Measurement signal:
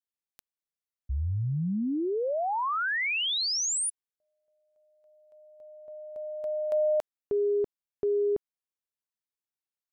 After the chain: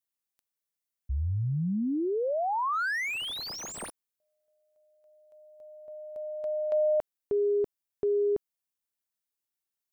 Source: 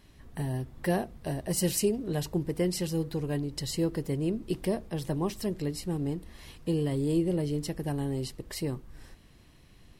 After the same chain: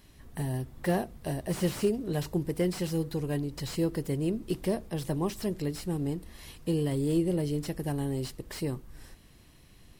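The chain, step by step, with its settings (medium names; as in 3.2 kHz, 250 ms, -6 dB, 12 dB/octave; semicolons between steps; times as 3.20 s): treble shelf 7.6 kHz +8 dB; slew-rate limiter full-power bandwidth 62 Hz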